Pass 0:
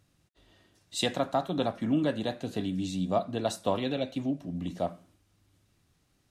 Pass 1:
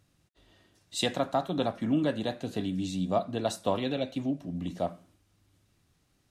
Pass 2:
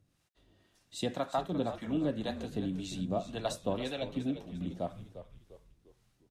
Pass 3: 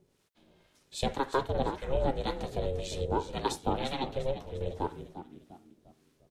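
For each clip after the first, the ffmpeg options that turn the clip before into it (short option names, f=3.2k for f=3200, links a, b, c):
-af anull
-filter_complex "[0:a]acrossover=split=560[a][b];[a]aeval=exprs='val(0)*(1-0.7/2+0.7/2*cos(2*PI*1.9*n/s))':c=same[c];[b]aeval=exprs='val(0)*(1-0.7/2-0.7/2*cos(2*PI*1.9*n/s))':c=same[d];[c][d]amix=inputs=2:normalize=0,asplit=2[e][f];[f]asplit=4[g][h][i][j];[g]adelay=349,afreqshift=-74,volume=-11.5dB[k];[h]adelay=698,afreqshift=-148,volume=-18.8dB[l];[i]adelay=1047,afreqshift=-222,volume=-26.2dB[m];[j]adelay=1396,afreqshift=-296,volume=-33.5dB[n];[k][l][m][n]amix=inputs=4:normalize=0[o];[e][o]amix=inputs=2:normalize=0,volume=-1.5dB"
-af "aeval=exprs='val(0)*sin(2*PI*270*n/s)':c=same,volume=6dB"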